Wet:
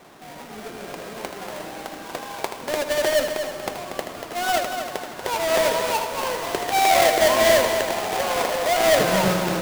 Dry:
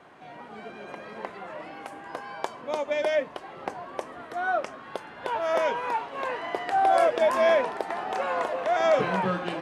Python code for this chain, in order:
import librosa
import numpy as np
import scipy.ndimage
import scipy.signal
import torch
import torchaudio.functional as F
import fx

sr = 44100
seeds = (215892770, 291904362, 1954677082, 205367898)

y = fx.halfwave_hold(x, sr)
y = fx.echo_heads(y, sr, ms=79, heads='first and third', feedback_pct=55, wet_db=-9)